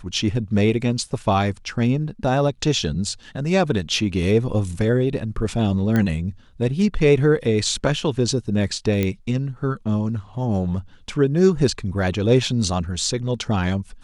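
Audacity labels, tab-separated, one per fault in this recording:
5.960000	5.960000	click −10 dBFS
9.030000	9.030000	click −9 dBFS

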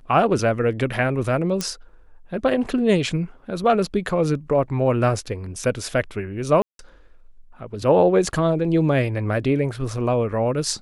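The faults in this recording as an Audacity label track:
1.610000	1.610000	click −10 dBFS
6.620000	6.790000	drop-out 172 ms

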